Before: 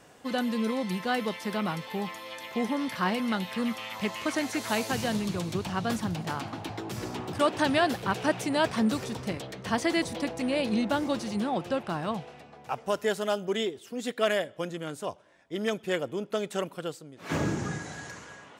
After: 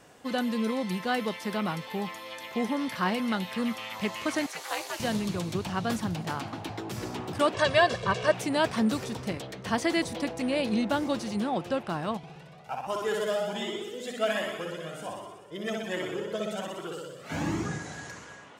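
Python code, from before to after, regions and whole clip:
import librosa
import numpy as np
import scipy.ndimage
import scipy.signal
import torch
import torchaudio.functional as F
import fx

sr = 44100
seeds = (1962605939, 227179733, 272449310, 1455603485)

y = fx.chain(x, sr, fx.highpass(hz=520.0, slope=24),
    fx.ring_mod(carrier_hz=140.0), at=(4.46, 5.0))
y = fx.chain(y, sr, fx.lowpass(hz=8100.0, slope=24),
    fx.comb(ms=1.8, depth=0.86), at=(7.54, 8.34))
y = fx.chain(y, sr, fx.room_flutter(wall_m=10.6, rt60_s=1.4),
    fx.comb_cascade(direction='rising', hz=1.3), at=(12.17, 17.65))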